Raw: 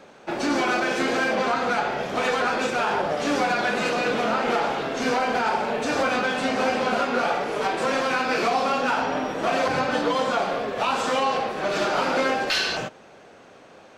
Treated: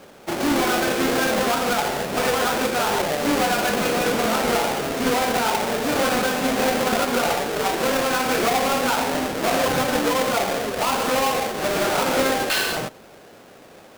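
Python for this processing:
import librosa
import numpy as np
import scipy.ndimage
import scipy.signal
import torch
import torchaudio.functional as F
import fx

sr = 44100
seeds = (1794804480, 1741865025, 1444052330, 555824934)

y = fx.halfwave_hold(x, sr)
y = F.gain(torch.from_numpy(y), -2.0).numpy()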